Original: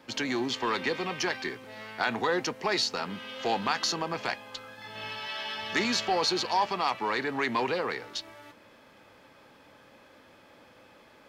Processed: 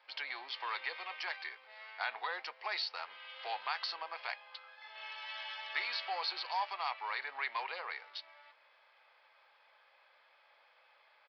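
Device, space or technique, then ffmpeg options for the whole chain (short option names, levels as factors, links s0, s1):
musical greeting card: -af "aresample=11025,aresample=44100,highpass=f=680:w=0.5412,highpass=f=680:w=1.3066,equalizer=f=2200:t=o:w=0.22:g=5,volume=0.376"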